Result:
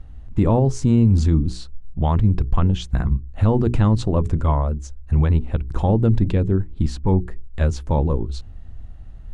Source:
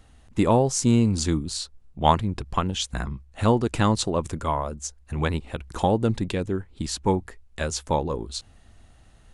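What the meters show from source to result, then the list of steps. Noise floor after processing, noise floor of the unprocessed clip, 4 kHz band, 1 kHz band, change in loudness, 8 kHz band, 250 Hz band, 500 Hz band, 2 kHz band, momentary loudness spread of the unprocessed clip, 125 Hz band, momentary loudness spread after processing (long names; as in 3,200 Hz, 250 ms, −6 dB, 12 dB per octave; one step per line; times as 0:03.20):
−38 dBFS, −54 dBFS, −7.0 dB, −3.5 dB, +5.0 dB, below −10 dB, +4.0 dB, +0.5 dB, −4.0 dB, 12 LU, +9.5 dB, 9 LU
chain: RIAA equalisation playback
mains-hum notches 60/120/180/240/300/360/420 Hz
brickwall limiter −8 dBFS, peak gain reduction 9 dB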